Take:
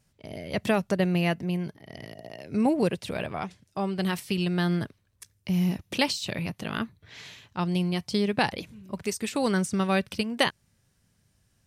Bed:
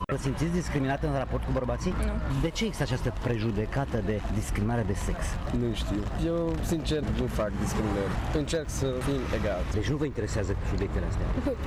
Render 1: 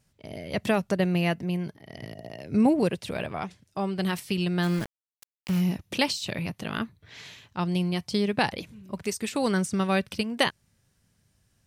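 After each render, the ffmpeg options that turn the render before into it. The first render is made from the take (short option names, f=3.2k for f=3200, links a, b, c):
-filter_complex "[0:a]asettb=1/sr,asplit=3[a][b][c];[a]atrim=end=2.024[d];[b]atrim=start=2.02:end=2.8,asetpts=PTS-STARTPTS,afade=t=in:d=0.004:c=qsin,afade=t=out:st=0.776:d=0.004:c=qsin,lowshelf=f=250:g=6.5[e];[c]atrim=start=2.796[f];[d][e]acrossfade=d=0.004:c1=hsin:c2=qsin[g];[g][f]acrossfade=d=0.004:c1=qsin:c2=hsin,asplit=3[h][i][j];[h]afade=t=out:st=4.62:d=0.02[k];[i]aeval=exprs='val(0)*gte(abs(val(0)),0.0251)':c=same,afade=t=in:st=4.62:d=0.02,afade=t=out:st=5.6:d=0.02[l];[j]afade=t=in:st=5.6:d=0.02[m];[k][l][m]amix=inputs=3:normalize=0"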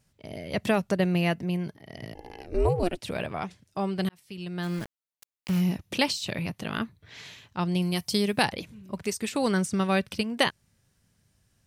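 -filter_complex "[0:a]asplit=3[a][b][c];[a]afade=t=out:st=2.13:d=0.02[d];[b]aeval=exprs='val(0)*sin(2*PI*180*n/s)':c=same,afade=t=in:st=2.13:d=0.02,afade=t=out:st=3.01:d=0.02[e];[c]afade=t=in:st=3.01:d=0.02[f];[d][e][f]amix=inputs=3:normalize=0,asettb=1/sr,asplit=3[g][h][i];[g]atrim=end=7.824[j];[h]atrim=start=7.82:end=8.45,asetpts=PTS-STARTPTS,afade=t=in:d=0.004:c=qsin,afade=t=out:st=0.626:d=0.004:c=qsin,aemphasis=mode=production:type=50fm[k];[i]atrim=start=8.446[l];[j][k]acrossfade=d=0.004:c1=hsin:c2=qsin[m];[m][l]acrossfade=d=0.004:c1=qsin:c2=hsin,asplit=2[n][o];[n]atrim=end=4.09,asetpts=PTS-STARTPTS,afade=t=out:st=4.086:d=0.004:c=hsin[p];[o]atrim=start=4.09,asetpts=PTS-STARTPTS,afade=t=in:d=1.63:c=qsin[q];[p][q]concat=n=2:v=0:a=1"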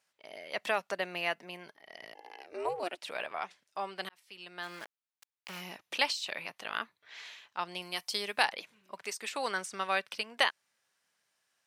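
-af "highpass=820,highshelf=f=5.1k:g=-9"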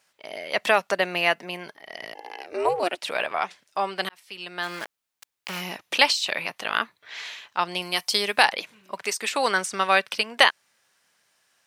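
-af "volume=11dB,alimiter=limit=-1dB:level=0:latency=1"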